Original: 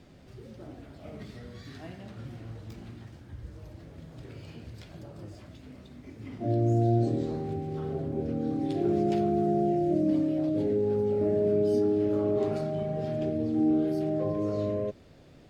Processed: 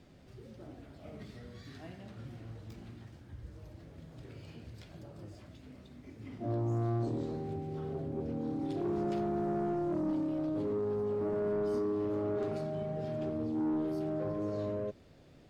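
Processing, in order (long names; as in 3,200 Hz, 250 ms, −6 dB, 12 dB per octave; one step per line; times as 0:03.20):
soft clipping −23 dBFS, distortion −15 dB
level −4.5 dB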